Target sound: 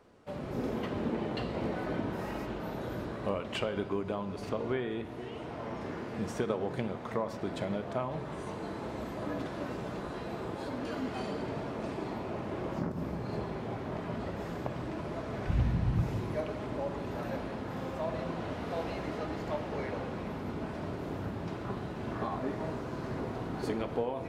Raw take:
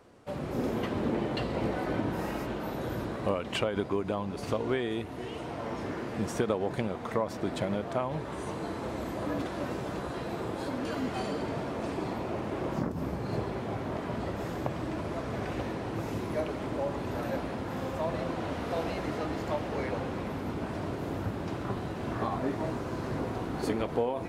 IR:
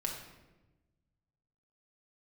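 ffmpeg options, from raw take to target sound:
-filter_complex "[0:a]asettb=1/sr,asplit=3[a][b][c];[a]atrim=end=4.494[d];[b]atrim=start=4.49:end=5.81,asetpts=PTS-STARTPTS,afade=t=in:d=0.004:c=qsin,afade=t=out:st=1.316:d=0.004:c=qsin,acrossover=split=3400[e][f];[f]acompressor=threshold=-57dB:ratio=4:attack=1:release=60[g];[e][g]amix=inputs=2:normalize=0[h];[c]atrim=start=5.806[i];[d][h]acrossfade=d=0.004:c1=hsin:c2=qsin[j];[j][i]acrossfade=d=0.004:c1=qsin:c2=hsin,asplit=3[k][l][m];[k]afade=t=out:st=15.47:d=0.02[n];[l]asubboost=boost=10.5:cutoff=120,afade=t=in:st=15.47:d=0.02,afade=t=out:st=16.02:d=0.02[o];[m]afade=t=in:st=16.02:d=0.02[p];[n][o][p]amix=inputs=3:normalize=0,asplit=2[q][r];[1:a]atrim=start_sample=2205,lowpass=7.2k[s];[r][s]afir=irnorm=-1:irlink=0,volume=-5.5dB[t];[q][t]amix=inputs=2:normalize=0,volume=-7dB"

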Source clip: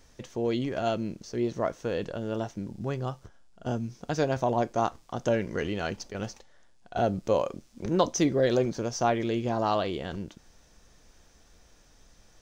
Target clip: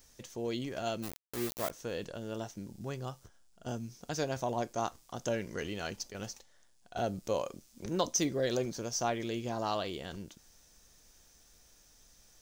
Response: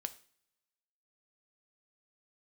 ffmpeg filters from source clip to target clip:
-filter_complex "[0:a]asplit=3[a][b][c];[a]afade=t=out:st=1.02:d=0.02[d];[b]aeval=exprs='val(0)*gte(abs(val(0)),0.0266)':c=same,afade=t=in:st=1.02:d=0.02,afade=t=out:st=1.69:d=0.02[e];[c]afade=t=in:st=1.69:d=0.02[f];[d][e][f]amix=inputs=3:normalize=0,aemphasis=mode=production:type=75kf,volume=-8dB"

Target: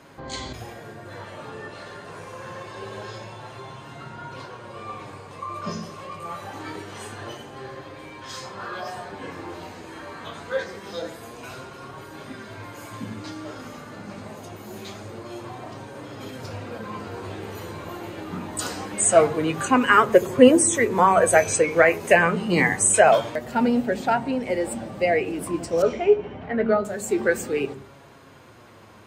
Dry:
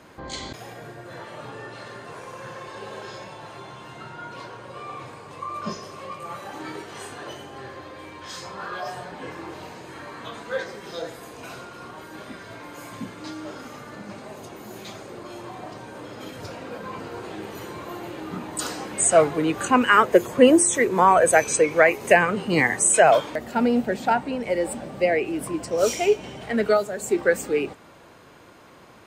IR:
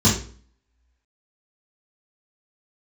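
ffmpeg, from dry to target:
-filter_complex "[0:a]asplit=2[a][b];[b]lowshelf=f=150:g=10[c];[1:a]atrim=start_sample=2205,lowpass=1.2k,adelay=75[d];[c][d]afir=irnorm=-1:irlink=0,volume=-37.5dB[e];[a][e]amix=inputs=2:normalize=0,flanger=delay=7.2:depth=4.9:regen=52:speed=0.25:shape=sinusoidal,asettb=1/sr,asplit=3[f][g][h];[f]atrim=end=25.824[i];[g]atrim=start=25.82:end=26.85,asetpts=PTS-STARTPTS,afade=t=in:d=0.004:c=qsin,afade=t=out:st=1.026:d=0.004:c=qsin,lowpass=1.9k[j];[h]atrim=start=26.846[k];[i][j]acrossfade=d=0.004:c1=hsin:c2=qsin[l];[l][k]acrossfade=d=0.004:c1=qsin:c2=hsin,volume=4dB"

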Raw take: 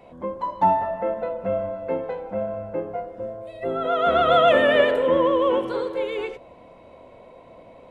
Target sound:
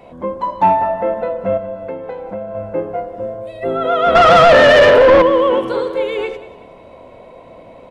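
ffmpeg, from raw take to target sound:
-filter_complex "[0:a]asettb=1/sr,asplit=3[a][b][c];[a]atrim=end=1.574[d];[b]atrim=start=1.57:end=2.55,asetpts=PTS-STARTPTS,afade=t=in:d=0.004:c=qsin,afade=t=out:st=0.976:d=0.004:c=qsin,acompressor=threshold=-31dB:ratio=5[e];[c]atrim=start=2.546[f];[d][e]acrossfade=d=0.004:c1=hsin:c2=qsin[g];[g][f]acrossfade=d=0.004:c1=qsin:c2=hsin,asettb=1/sr,asplit=3[h][i][j];[h]atrim=end=4.154[k];[i]atrim=start=4.15:end=5.22,asetpts=PTS-STARTPTS,afade=t=in:d=0.004:c=qsin,afade=t=out:st=1.066:d=0.004:c=qsin,asplit=2[l][m];[m]highpass=f=720:p=1,volume=23dB,asoftclip=type=tanh:threshold=-5.5dB[n];[l][n]amix=inputs=2:normalize=0,lowpass=f=1.5k:p=1,volume=-6dB[o];[j]atrim=start=5.216[p];[k][o]acrossfade=d=0.004:c1=hsin:c2=qsin[q];[q][p]acrossfade=d=0.004:c1=qsin:c2=hsin,acontrast=86,asplit=2[r][s];[s]aecho=0:1:189|378|567:0.158|0.0571|0.0205[t];[r][t]amix=inputs=2:normalize=0"

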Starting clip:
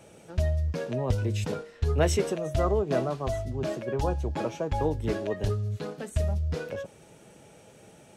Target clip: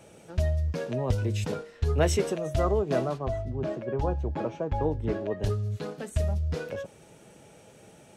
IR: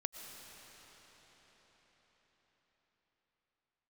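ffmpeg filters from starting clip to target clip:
-filter_complex "[0:a]asplit=3[a][b][c];[a]afade=t=out:st=3.17:d=0.02[d];[b]lowpass=f=1.5k:p=1,afade=t=in:st=3.17:d=0.02,afade=t=out:st=5.42:d=0.02[e];[c]afade=t=in:st=5.42:d=0.02[f];[d][e][f]amix=inputs=3:normalize=0"

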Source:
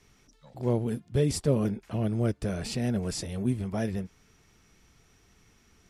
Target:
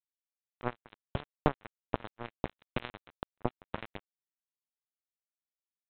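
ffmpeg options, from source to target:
-af "acompressor=threshold=-31dB:ratio=12,aresample=8000,acrusher=bits=3:mix=0:aa=0.5,aresample=44100,volume=13.5dB"

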